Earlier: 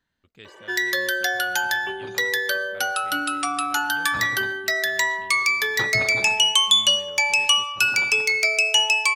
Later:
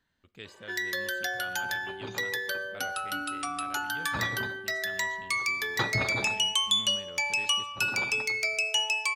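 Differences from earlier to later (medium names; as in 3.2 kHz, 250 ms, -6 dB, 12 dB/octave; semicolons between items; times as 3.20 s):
first sound -9.0 dB; reverb: on, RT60 0.75 s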